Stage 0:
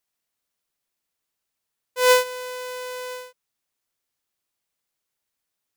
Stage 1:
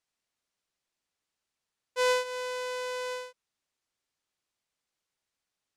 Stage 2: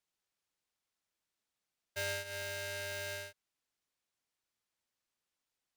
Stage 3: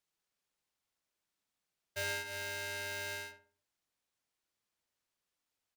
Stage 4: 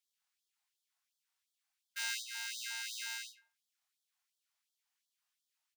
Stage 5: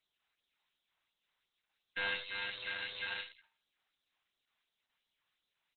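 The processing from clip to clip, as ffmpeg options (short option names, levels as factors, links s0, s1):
-af "acompressor=threshold=0.0708:ratio=4,lowpass=7800,volume=0.841"
-af "acompressor=threshold=0.0141:ratio=2.5,aeval=exprs='val(0)*sgn(sin(2*PI*1100*n/s))':c=same,volume=0.708"
-filter_complex "[0:a]asplit=2[s0][s1];[s1]adelay=66,lowpass=f=1500:p=1,volume=0.596,asplit=2[s2][s3];[s3]adelay=66,lowpass=f=1500:p=1,volume=0.4,asplit=2[s4][s5];[s5]adelay=66,lowpass=f=1500:p=1,volume=0.4,asplit=2[s6][s7];[s7]adelay=66,lowpass=f=1500:p=1,volume=0.4,asplit=2[s8][s9];[s9]adelay=66,lowpass=f=1500:p=1,volume=0.4[s10];[s0][s2][s4][s6][s8][s10]amix=inputs=6:normalize=0"
-filter_complex "[0:a]asplit=2[s0][s1];[s1]adelay=26,volume=0.631[s2];[s0][s2]amix=inputs=2:normalize=0,afftfilt=real='re*gte(b*sr/1024,620*pow(3200/620,0.5+0.5*sin(2*PI*2.8*pts/sr)))':imag='im*gte(b*sr/1024,620*pow(3200/620,0.5+0.5*sin(2*PI*2.8*pts/sr)))':win_size=1024:overlap=0.75"
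-filter_complex "[0:a]acrossover=split=1300[s0][s1];[s1]aeval=exprs='clip(val(0),-1,0.00841)':c=same[s2];[s0][s2]amix=inputs=2:normalize=0,asplit=2[s3][s4];[s4]adelay=90,highpass=300,lowpass=3400,asoftclip=type=hard:threshold=0.0282,volume=0.224[s5];[s3][s5]amix=inputs=2:normalize=0,volume=2.51" -ar 48000 -c:a libopus -b:a 8k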